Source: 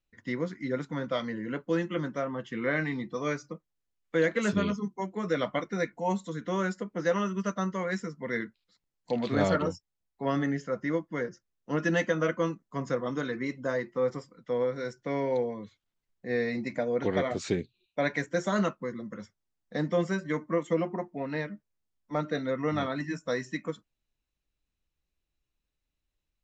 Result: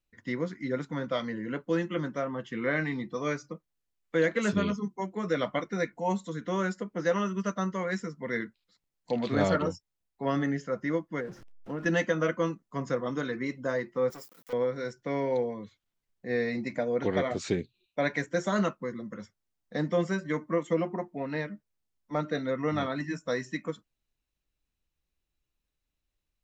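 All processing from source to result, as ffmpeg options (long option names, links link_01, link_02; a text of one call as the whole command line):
ffmpeg -i in.wav -filter_complex "[0:a]asettb=1/sr,asplit=3[link_01][link_02][link_03];[link_01]atrim=end=11.204[link_04];[link_02]atrim=start=11.2:end=11.86,asetpts=PTS-STARTPTS,afade=type=in:duration=0.004:curve=qsin,afade=type=out:start_time=0.656:duration=0.004:curve=qsin,aeval=exprs='val(0)+0.5*0.00794*sgn(val(0))':channel_layout=same,lowpass=frequency=1400:poles=1,acompressor=threshold=-33dB:ratio=2.5:attack=3.2:release=140:knee=1:detection=peak[link_05];[link_03]atrim=start=11.856[link_06];[link_04][link_05]acrossfade=duration=0.004:curve1=hsin:curve2=qsin[link_07];[link_07][link_06]acrossfade=duration=0.004:curve1=qsin:curve2=hsin,asettb=1/sr,asplit=3[link_08][link_09][link_10];[link_08]atrim=end=14.104[link_11];[link_09]atrim=start=14.1:end=14.53,asetpts=PTS-STARTPTS,afade=type=in:duration=0.004:curve=qsin,afade=type=out:start_time=0.426:duration=0.004:curve=qsin,aeval=exprs='(tanh(70.8*val(0)+0.55)-tanh(0.55))/70.8':channel_layout=same,aeval=exprs='val(0)*gte(abs(val(0)),0.00119)':channel_layout=same,aemphasis=mode=production:type=bsi[link_12];[link_10]atrim=start=14.526[link_13];[link_11][link_12]acrossfade=duration=0.004:curve1=hsin:curve2=qsin[link_14];[link_14][link_13]acrossfade=duration=0.004:curve1=qsin:curve2=hsin" out.wav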